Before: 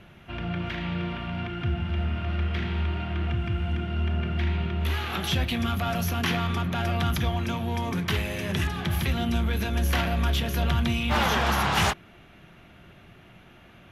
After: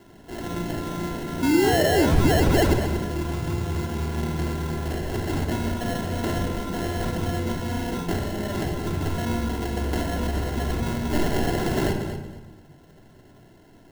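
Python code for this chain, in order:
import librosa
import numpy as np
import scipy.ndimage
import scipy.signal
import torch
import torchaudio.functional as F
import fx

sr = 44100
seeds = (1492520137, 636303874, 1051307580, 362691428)

p1 = scipy.signal.sosfilt(scipy.signal.butter(2, 140.0, 'highpass', fs=sr, output='sos'), x)
p2 = fx.notch(p1, sr, hz=530.0, q=12.0)
p3 = fx.rider(p2, sr, range_db=5, speed_s=0.5)
p4 = p2 + (p3 * librosa.db_to_amplitude(-2.5))
p5 = fx.spec_paint(p4, sr, seeds[0], shape='rise', start_s=1.42, length_s=1.32, low_hz=250.0, high_hz=4100.0, level_db=-17.0)
p6 = fx.sample_hold(p5, sr, seeds[1], rate_hz=1200.0, jitter_pct=0)
p7 = p6 + fx.echo_feedback(p6, sr, ms=232, feedback_pct=22, wet_db=-10.5, dry=0)
p8 = fx.room_shoebox(p7, sr, seeds[2], volume_m3=4000.0, walls='furnished', distance_m=3.1)
y = p8 * librosa.db_to_amplitude(-6.0)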